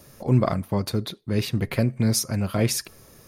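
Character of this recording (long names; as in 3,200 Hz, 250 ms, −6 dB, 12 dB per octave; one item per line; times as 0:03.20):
background noise floor −52 dBFS
spectral slope −5.5 dB per octave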